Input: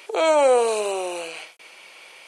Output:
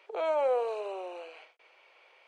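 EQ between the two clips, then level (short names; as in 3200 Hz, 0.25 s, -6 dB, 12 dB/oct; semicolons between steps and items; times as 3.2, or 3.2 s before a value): HPF 400 Hz 24 dB/oct; tape spacing loss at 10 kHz 30 dB; -8.5 dB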